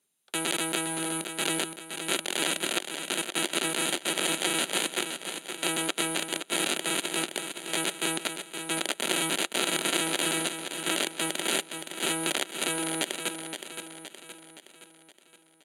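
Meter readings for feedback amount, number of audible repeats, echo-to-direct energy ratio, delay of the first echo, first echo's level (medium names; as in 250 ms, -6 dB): 50%, 5, -7.0 dB, 519 ms, -8.0 dB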